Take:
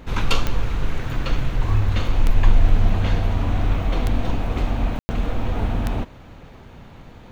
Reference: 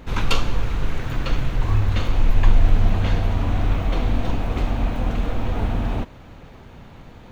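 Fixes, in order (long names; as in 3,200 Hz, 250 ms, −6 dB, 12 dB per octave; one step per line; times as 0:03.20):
click removal
ambience match 0:04.99–0:05.09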